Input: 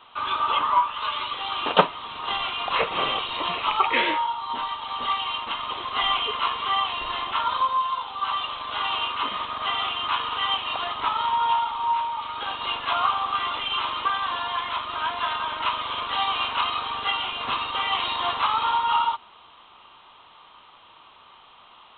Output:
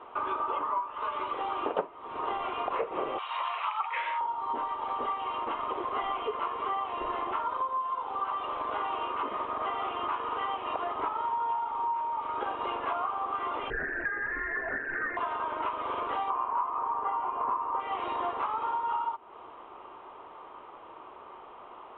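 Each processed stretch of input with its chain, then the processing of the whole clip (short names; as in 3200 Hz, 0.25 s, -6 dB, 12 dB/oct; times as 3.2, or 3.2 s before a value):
3.18–4.21 HPF 880 Hz 24 dB/oct + high shelf 3600 Hz +11.5 dB
13.7–15.17 formant sharpening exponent 1.5 + inverted band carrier 2800 Hz
16.3–17.8 LPF 1700 Hz + bell 1000 Hz +14.5 dB 0.52 oct
whole clip: EQ curve 200 Hz 0 dB, 370 Hz +14 dB, 2300 Hz -4 dB, 5100 Hz -27 dB; compressor 5:1, threshold -30 dBFS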